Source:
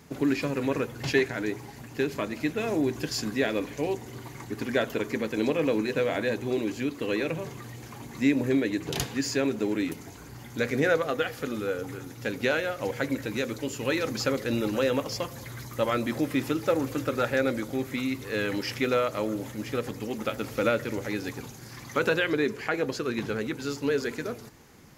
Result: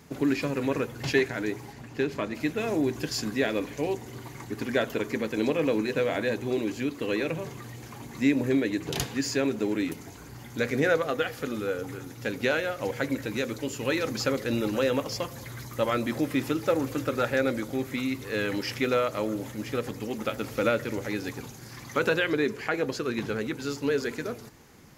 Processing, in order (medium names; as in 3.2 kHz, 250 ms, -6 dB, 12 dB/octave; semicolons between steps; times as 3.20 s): 1.73–2.35 s: treble shelf 8.8 kHz -12 dB